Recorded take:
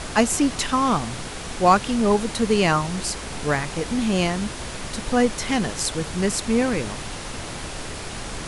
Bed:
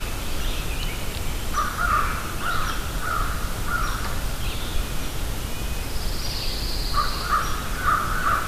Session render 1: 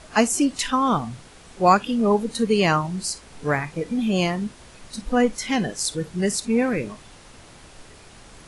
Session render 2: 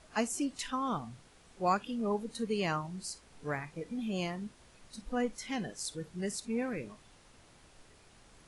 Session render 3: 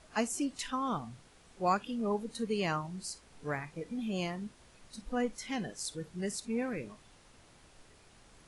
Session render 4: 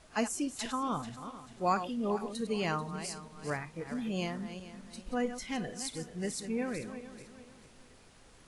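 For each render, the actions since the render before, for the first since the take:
noise reduction from a noise print 14 dB
level −13.5 dB
no processing that can be heard
feedback delay that plays each chunk backwards 219 ms, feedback 57%, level −10.5 dB

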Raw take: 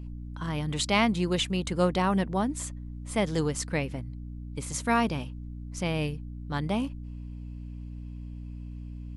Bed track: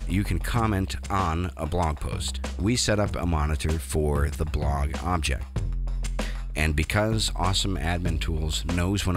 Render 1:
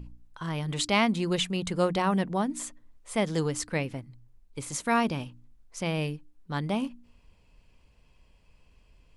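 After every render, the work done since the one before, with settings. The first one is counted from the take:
hum removal 60 Hz, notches 5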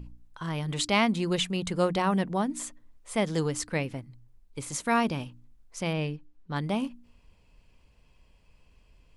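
0:05.93–0:06.56: high-frequency loss of the air 82 metres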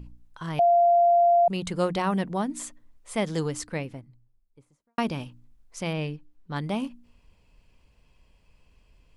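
0:00.59–0:01.48: beep over 692 Hz −15.5 dBFS
0:03.33–0:04.98: fade out and dull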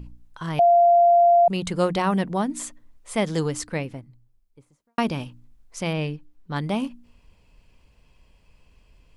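level +3.5 dB

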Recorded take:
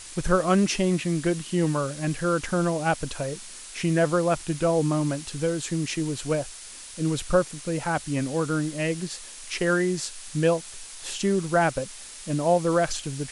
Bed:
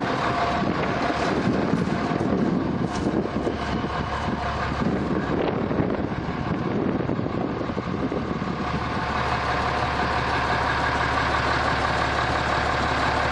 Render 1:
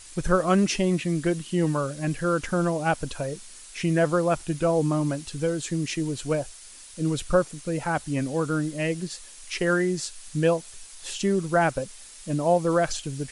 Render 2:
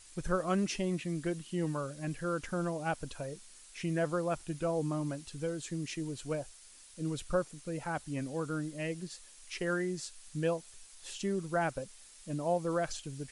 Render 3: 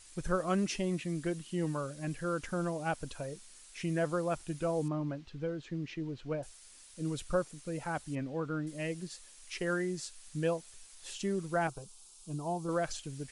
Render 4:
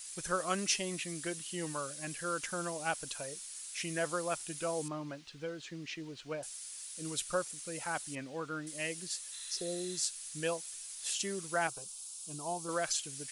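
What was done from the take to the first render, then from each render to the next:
broadband denoise 6 dB, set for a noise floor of −42 dBFS
level −10 dB
0:04.88–0:06.43: high-frequency loss of the air 230 metres; 0:08.15–0:08.67: low-pass filter 3,100 Hz; 0:11.67–0:12.69: phaser with its sweep stopped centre 370 Hz, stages 8
0:09.35–0:09.97: healed spectral selection 790–4,200 Hz after; spectral tilt +3.5 dB per octave

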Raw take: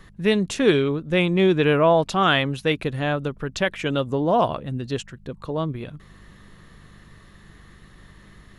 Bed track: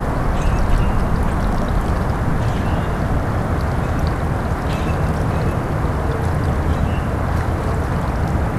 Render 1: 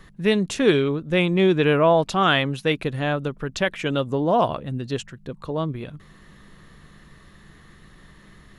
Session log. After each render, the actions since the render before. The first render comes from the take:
hum removal 50 Hz, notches 2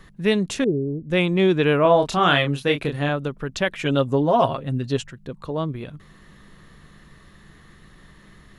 0:00.64–0:01.10: Gaussian smoothing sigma 19 samples
0:01.82–0:03.09: double-tracking delay 28 ms −5 dB
0:03.77–0:05.11: comb filter 7.4 ms, depth 61%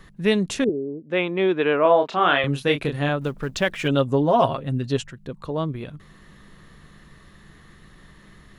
0:00.69–0:02.44: band-pass filter 310–2,900 Hz
0:03.21–0:03.88: mu-law and A-law mismatch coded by mu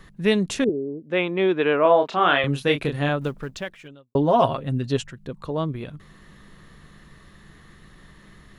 0:03.25–0:04.15: fade out quadratic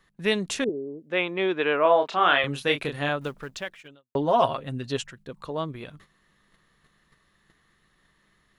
noise gate −44 dBFS, range −12 dB
low-shelf EQ 410 Hz −9.5 dB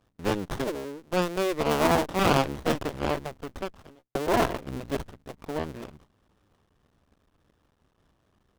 sub-harmonics by changed cycles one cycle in 2, muted
windowed peak hold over 17 samples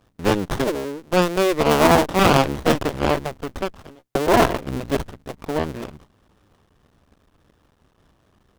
level +8 dB
brickwall limiter −3 dBFS, peak gain reduction 3 dB

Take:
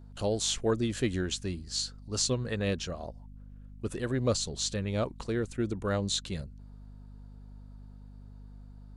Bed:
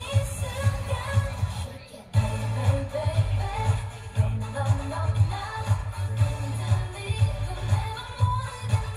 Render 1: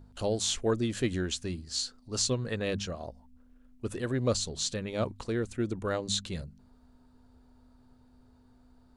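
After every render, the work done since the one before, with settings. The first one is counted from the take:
hum removal 50 Hz, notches 4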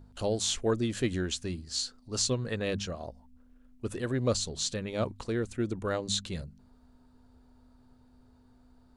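no processing that can be heard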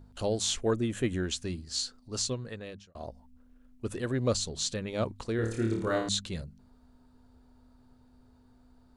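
0:00.75–0:01.23: parametric band 4,700 Hz −13.5 dB 0.57 octaves
0:01.96–0:02.95: fade out
0:05.36–0:06.09: flutter between parallel walls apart 4.6 metres, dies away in 0.55 s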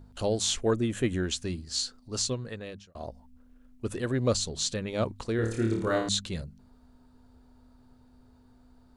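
level +2 dB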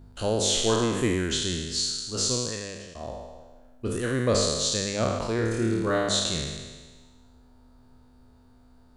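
peak hold with a decay on every bin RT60 1.41 s

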